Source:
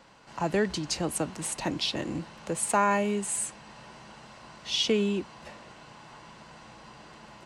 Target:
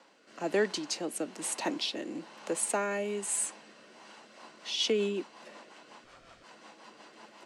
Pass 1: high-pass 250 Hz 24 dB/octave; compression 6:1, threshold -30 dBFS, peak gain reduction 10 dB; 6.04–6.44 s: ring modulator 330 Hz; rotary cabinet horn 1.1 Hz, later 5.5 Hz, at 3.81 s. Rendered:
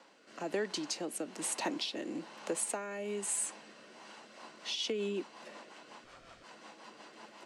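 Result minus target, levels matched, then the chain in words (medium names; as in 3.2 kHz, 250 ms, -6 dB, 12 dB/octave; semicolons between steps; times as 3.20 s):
compression: peak gain reduction +10 dB
high-pass 250 Hz 24 dB/octave; 6.04–6.44 s: ring modulator 330 Hz; rotary cabinet horn 1.1 Hz, later 5.5 Hz, at 3.81 s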